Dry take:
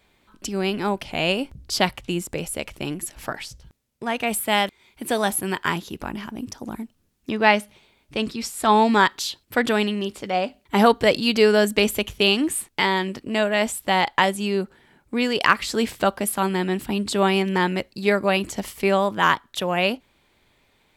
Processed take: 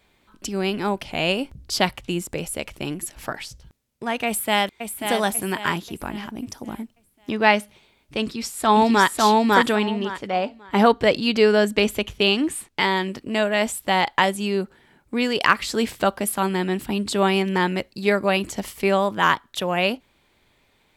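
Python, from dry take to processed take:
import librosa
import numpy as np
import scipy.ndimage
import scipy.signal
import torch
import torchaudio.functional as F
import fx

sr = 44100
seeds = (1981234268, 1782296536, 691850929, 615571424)

y = fx.echo_throw(x, sr, start_s=4.26, length_s=0.79, ms=540, feedback_pct=40, wet_db=-6.5)
y = fx.echo_throw(y, sr, start_s=8.21, length_s=0.9, ms=550, feedback_pct=20, wet_db=-0.5)
y = fx.high_shelf(y, sr, hz=fx.line((9.74, 5600.0), (12.8, 10000.0)), db=-10.5, at=(9.74, 12.8), fade=0.02)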